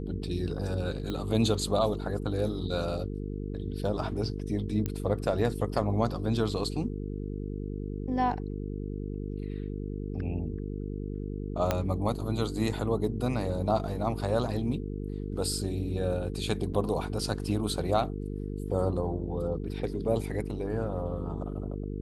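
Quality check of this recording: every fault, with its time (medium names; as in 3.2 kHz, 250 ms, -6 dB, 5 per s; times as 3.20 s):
buzz 50 Hz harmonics 9 -35 dBFS
1.10 s: pop -21 dBFS
4.86 s: pop -17 dBFS
11.71 s: pop -11 dBFS
16.73–16.74 s: dropout 8.3 ms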